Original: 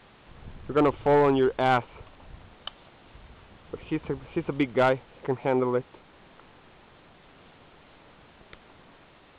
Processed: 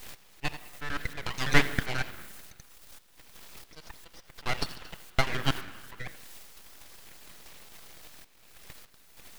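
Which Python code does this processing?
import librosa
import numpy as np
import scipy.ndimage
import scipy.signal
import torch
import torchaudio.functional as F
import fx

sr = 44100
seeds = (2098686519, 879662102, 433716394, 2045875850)

p1 = fx.block_reorder(x, sr, ms=81.0, group=5)
p2 = fx.high_shelf(p1, sr, hz=3100.0, db=3.0)
p3 = fx.quant_dither(p2, sr, seeds[0], bits=8, dither='triangular')
p4 = p2 + (p3 * librosa.db_to_amplitude(-7.5))
p5 = fx.dereverb_blind(p4, sr, rt60_s=1.8)
p6 = fx.transient(p5, sr, attack_db=11, sustain_db=7)
p7 = p6 + fx.echo_single(p6, sr, ms=85, db=-19.0, dry=0)
p8 = fx.auto_swell(p7, sr, attack_ms=450.0)
p9 = scipy.signal.sosfilt(scipy.signal.butter(4, 710.0, 'highpass', fs=sr, output='sos'), p8)
p10 = fx.room_shoebox(p9, sr, seeds[1], volume_m3=2900.0, walls='mixed', distance_m=0.74)
p11 = np.abs(p10)
y = p11 * librosa.db_to_amplitude(5.5)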